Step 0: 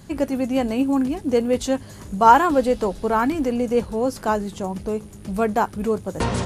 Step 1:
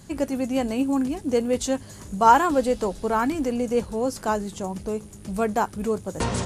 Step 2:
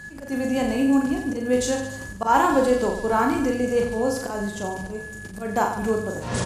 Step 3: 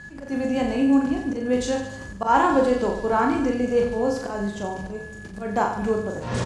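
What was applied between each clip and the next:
peaking EQ 7.6 kHz +6 dB 1.1 oct; trim -3 dB
whistle 1.7 kHz -39 dBFS; slow attack 147 ms; reverse bouncing-ball echo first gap 40 ms, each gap 1.2×, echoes 5
distance through air 78 m; doubling 25 ms -11.5 dB

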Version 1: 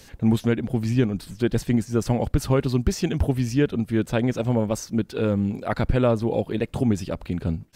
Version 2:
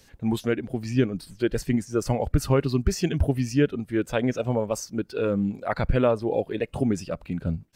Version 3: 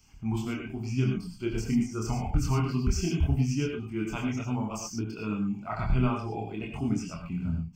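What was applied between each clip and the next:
spectral noise reduction 8 dB
chorus voices 4, 0.77 Hz, delay 26 ms, depth 3 ms; static phaser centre 2.6 kHz, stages 8; gated-style reverb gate 130 ms rising, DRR 3 dB

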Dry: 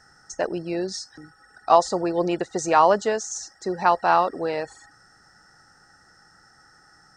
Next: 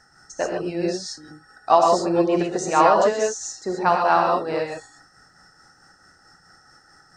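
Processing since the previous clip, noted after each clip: gated-style reverb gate 160 ms rising, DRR -1 dB; tremolo 4.6 Hz, depth 39%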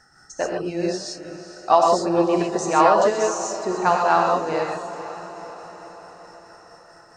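echo that smears into a reverb 471 ms, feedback 59%, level -13 dB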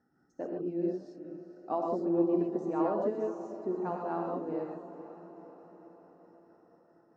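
band-pass filter 270 Hz, Q 2.3; trim -2.5 dB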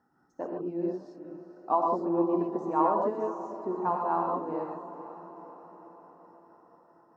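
peaking EQ 1 kHz +14.5 dB 0.62 oct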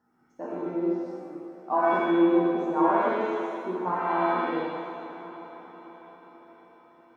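pitch-shifted reverb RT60 1.1 s, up +7 st, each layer -8 dB, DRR -3.5 dB; trim -3 dB

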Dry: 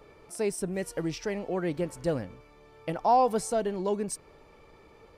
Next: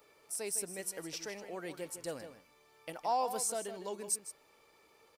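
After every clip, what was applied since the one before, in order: RIAA curve recording; echo from a far wall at 27 m, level -10 dB; trim -9 dB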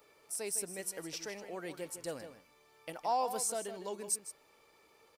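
no audible change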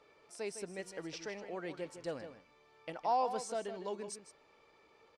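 distance through air 130 m; trim +1 dB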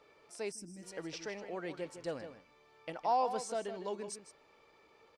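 time-frequency box 0.52–0.83 s, 350–4700 Hz -19 dB; trim +1 dB

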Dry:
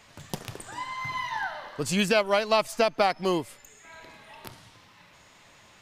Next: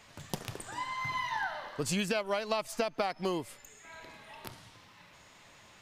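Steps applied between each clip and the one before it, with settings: compression 6:1, threshold -26 dBFS, peak gain reduction 8.5 dB; trim -2 dB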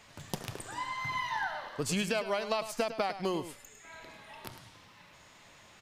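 delay 104 ms -12 dB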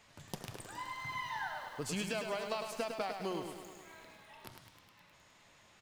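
bit-crushed delay 104 ms, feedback 80%, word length 8-bit, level -12 dB; trim -6.5 dB

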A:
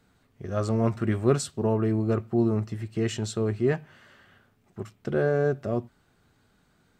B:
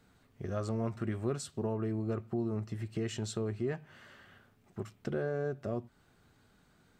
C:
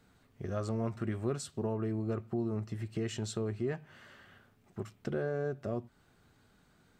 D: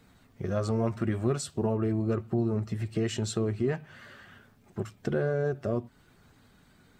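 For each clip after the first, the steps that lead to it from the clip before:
compression 2.5:1, threshold -34 dBFS, peak gain reduction 12.5 dB; trim -1 dB
no audible change
coarse spectral quantiser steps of 15 dB; trim +6.5 dB

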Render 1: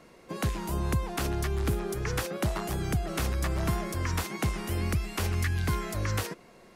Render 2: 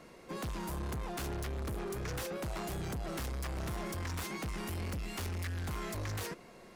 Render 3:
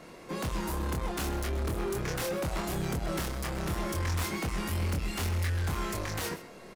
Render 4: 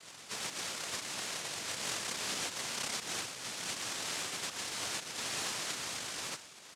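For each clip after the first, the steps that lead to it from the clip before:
saturation -35.5 dBFS, distortion -7 dB
doubling 25 ms -3.5 dB; delay 128 ms -15.5 dB; trim +4.5 dB
pre-echo 251 ms -16 dB; noise-vocoded speech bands 1; trim -5 dB

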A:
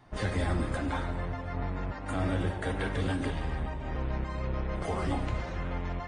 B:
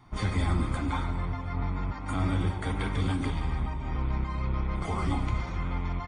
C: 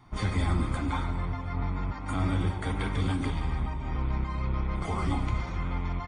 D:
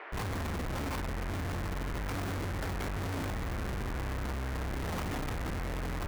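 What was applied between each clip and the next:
comb 0.9 ms, depth 56%
no audible change
echo that smears into a reverb 492 ms, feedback 56%, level -14 dB; Schmitt trigger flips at -35.5 dBFS; band noise 360–2100 Hz -40 dBFS; trim -6 dB

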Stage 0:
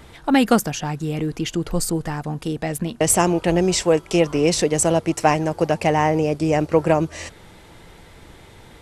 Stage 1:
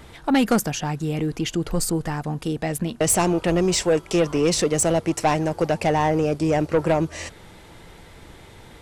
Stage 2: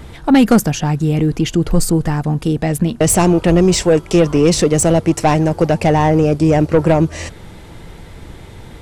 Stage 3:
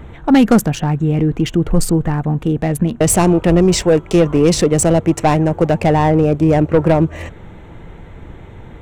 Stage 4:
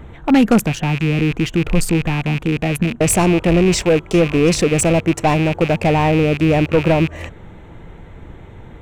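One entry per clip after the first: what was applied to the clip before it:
saturation -11.5 dBFS, distortion -14 dB
bass shelf 320 Hz +8 dB; trim +4.5 dB
local Wiener filter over 9 samples
rattle on loud lows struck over -24 dBFS, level -13 dBFS; trim -2 dB

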